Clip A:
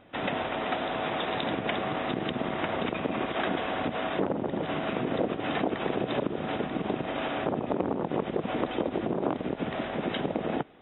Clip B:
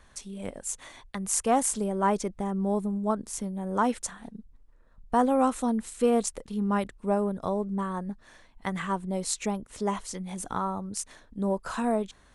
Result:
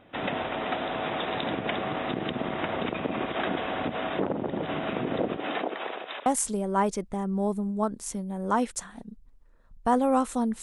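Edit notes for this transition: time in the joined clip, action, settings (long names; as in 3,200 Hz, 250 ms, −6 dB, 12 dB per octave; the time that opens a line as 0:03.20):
clip A
0:05.37–0:06.26: high-pass filter 210 Hz → 1,400 Hz
0:06.26: continue with clip B from 0:01.53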